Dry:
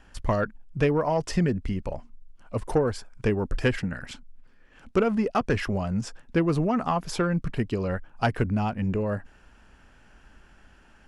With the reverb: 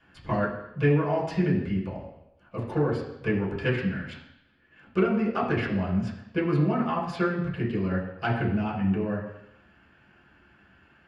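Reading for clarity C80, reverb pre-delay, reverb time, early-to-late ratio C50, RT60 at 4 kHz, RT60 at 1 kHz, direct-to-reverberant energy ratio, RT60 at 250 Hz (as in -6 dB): 8.5 dB, 3 ms, 0.85 s, 5.5 dB, 0.90 s, 0.85 s, -6.5 dB, 0.80 s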